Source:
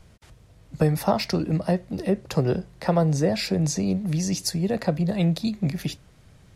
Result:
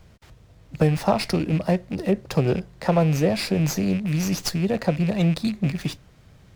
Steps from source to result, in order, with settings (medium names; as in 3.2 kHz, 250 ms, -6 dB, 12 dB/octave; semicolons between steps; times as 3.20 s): rattle on loud lows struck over -29 dBFS, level -29 dBFS; sliding maximum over 3 samples; trim +1.5 dB